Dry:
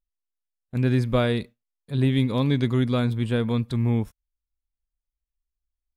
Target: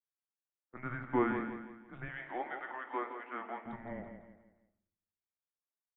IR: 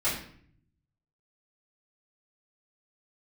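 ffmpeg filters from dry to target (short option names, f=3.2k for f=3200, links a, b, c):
-filter_complex "[0:a]aecho=1:1:167|334|501|668:0.376|0.147|0.0572|0.0223,flanger=delay=4.1:depth=7.3:regen=-88:speed=1.2:shape=sinusoidal,highpass=f=540:t=q:w=0.5412,highpass=f=540:t=q:w=1.307,lowpass=f=2.2k:t=q:w=0.5176,lowpass=f=2.2k:t=q:w=0.7071,lowpass=f=2.2k:t=q:w=1.932,afreqshift=-250,asettb=1/sr,asplit=3[a][b][c];[a]atrim=end=2.084[d];[b]atrim=start=2.08:end=3.65,asetpts=PTS-STARTPTS,afade=t=in:d=0.004:c=qsin,afade=t=out:st=1.566:d=0.004:c=qsin,highpass=f=370:w=0.5412,highpass=f=370:w=1.3066[e];[c]atrim=start=3.646[f];[d][e]acrossfade=d=0.004:c1=hsin:c2=qsin[g];[g][f]acrossfade=d=0.004:c1=qsin:c2=hsin,asplit=2[h][i];[1:a]atrim=start_sample=2205[j];[i][j]afir=irnorm=-1:irlink=0,volume=-18dB[k];[h][k]amix=inputs=2:normalize=0"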